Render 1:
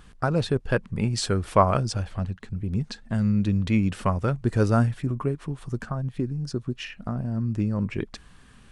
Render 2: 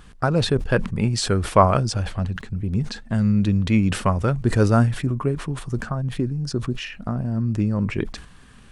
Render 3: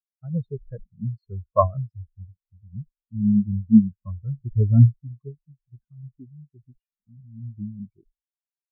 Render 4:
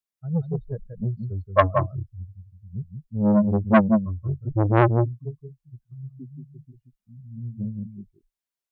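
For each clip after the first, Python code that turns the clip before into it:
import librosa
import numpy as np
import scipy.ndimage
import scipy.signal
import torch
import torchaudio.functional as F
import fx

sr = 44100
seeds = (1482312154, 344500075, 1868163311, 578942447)

y1 = fx.sustainer(x, sr, db_per_s=110.0)
y1 = F.gain(torch.from_numpy(y1), 3.5).numpy()
y2 = fx.spectral_expand(y1, sr, expansion=4.0)
y2 = F.gain(torch.from_numpy(y2), -2.5).numpy()
y3 = y2 + 10.0 ** (-6.5 / 20.0) * np.pad(y2, (int(178 * sr / 1000.0), 0))[:len(y2)]
y3 = fx.transformer_sat(y3, sr, knee_hz=870.0)
y3 = F.gain(torch.from_numpy(y3), 3.0).numpy()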